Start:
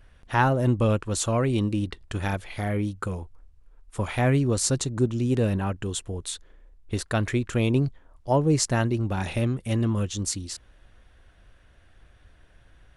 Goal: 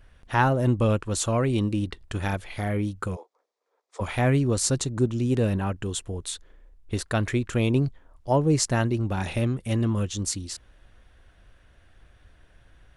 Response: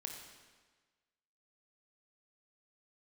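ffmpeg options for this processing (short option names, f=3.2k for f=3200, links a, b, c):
-filter_complex "[0:a]asplit=3[a][b][c];[a]afade=t=out:st=3.15:d=0.02[d];[b]highpass=f=440:w=0.5412,highpass=f=440:w=1.3066,equalizer=f=490:t=q:w=4:g=5,equalizer=f=1.5k:t=q:w=4:g=-8,equalizer=f=2.8k:t=q:w=4:g=-10,lowpass=f=6.9k:w=0.5412,lowpass=f=6.9k:w=1.3066,afade=t=in:st=3.15:d=0.02,afade=t=out:st=4:d=0.02[e];[c]afade=t=in:st=4:d=0.02[f];[d][e][f]amix=inputs=3:normalize=0"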